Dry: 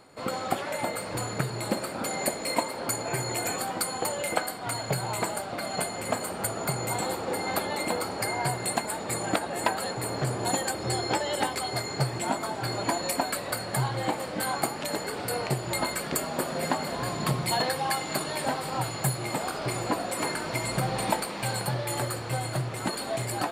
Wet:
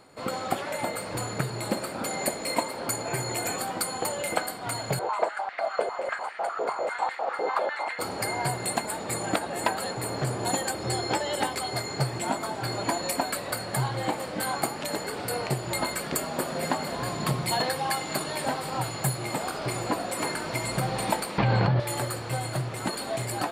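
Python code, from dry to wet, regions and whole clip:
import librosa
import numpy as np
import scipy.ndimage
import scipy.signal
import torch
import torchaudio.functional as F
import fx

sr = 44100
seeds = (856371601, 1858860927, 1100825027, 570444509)

y = fx.chain(x, sr, fx.lowpass(hz=6100.0, slope=12),
    fx.high_shelf(hz=2700.0, db=-12.0),
    fx.filter_held_highpass(hz=10.0, low_hz=470.0, high_hz=1900.0), at=(4.99, 7.99))
y = fx.chain(y, sr, fx.gaussian_blur(sigma=2.3),
    fx.low_shelf(hz=210.0, db=8.5),
    fx.env_flatten(amount_pct=100), at=(21.38, 21.8))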